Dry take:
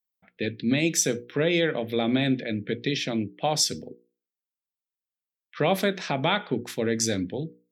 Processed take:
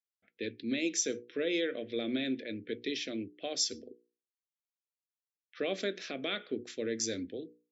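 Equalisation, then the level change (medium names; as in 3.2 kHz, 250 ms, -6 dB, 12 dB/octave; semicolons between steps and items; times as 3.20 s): high-pass 88 Hz; brick-wall FIR low-pass 7.6 kHz; static phaser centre 370 Hz, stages 4; -7.0 dB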